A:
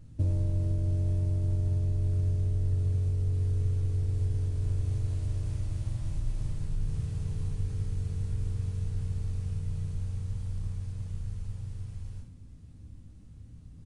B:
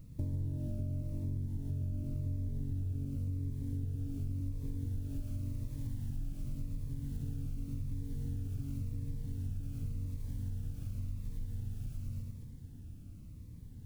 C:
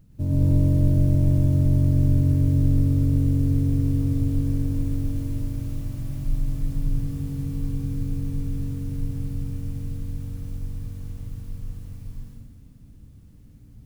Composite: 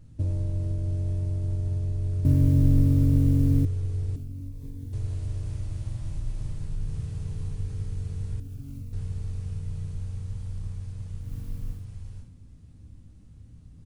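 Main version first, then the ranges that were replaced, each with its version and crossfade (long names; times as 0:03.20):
A
0:02.25–0:03.65: punch in from C
0:04.16–0:04.93: punch in from B
0:08.40–0:08.93: punch in from B
0:11.26–0:11.79: punch in from C, crossfade 0.16 s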